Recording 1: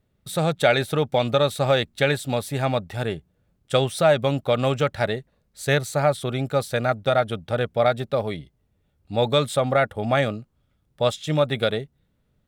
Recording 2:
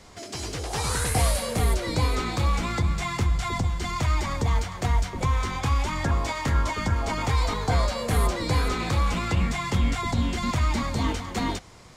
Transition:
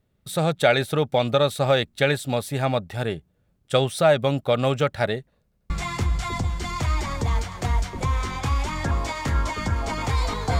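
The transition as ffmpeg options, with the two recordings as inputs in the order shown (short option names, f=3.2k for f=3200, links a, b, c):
-filter_complex "[0:a]apad=whole_dur=10.59,atrim=end=10.59,asplit=3[a][b][c];[a]atrim=end=5.522[d];[b]atrim=start=5.428:end=5.522[e];[c]atrim=start=5.428:end=5.522[f];[1:a]atrim=start=2.898:end=7.79[g];[d][e]acrossfade=d=0.004:c1=hsin:c2=hsin[h];[h][f]acrossfade=d=0.004:c1=hsin:c2=hsin[i];[i][g]acrossfade=d=0.004:c1=hsin:c2=hsin"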